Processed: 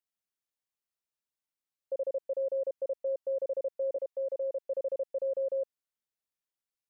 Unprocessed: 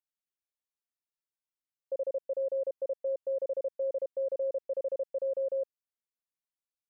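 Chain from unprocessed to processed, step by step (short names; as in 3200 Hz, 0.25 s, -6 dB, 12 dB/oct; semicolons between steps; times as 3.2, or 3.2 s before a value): 3.96–4.68 HPF 430 Hz 12 dB/oct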